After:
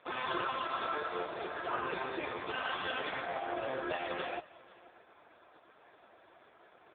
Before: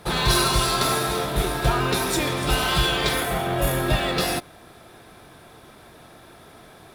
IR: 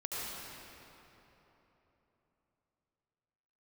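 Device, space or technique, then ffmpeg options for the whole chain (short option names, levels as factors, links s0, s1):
satellite phone: -filter_complex "[0:a]asplit=3[s0][s1][s2];[s0]afade=t=out:st=1.73:d=0.02[s3];[s1]lowpass=f=5300:w=0.5412,lowpass=f=5300:w=1.3066,afade=t=in:st=1.73:d=0.02,afade=t=out:st=2.18:d=0.02[s4];[s2]afade=t=in:st=2.18:d=0.02[s5];[s3][s4][s5]amix=inputs=3:normalize=0,highpass=390,lowpass=3000,aecho=1:1:506:0.0841,volume=0.473" -ar 8000 -c:a libopencore_amrnb -b:a 4750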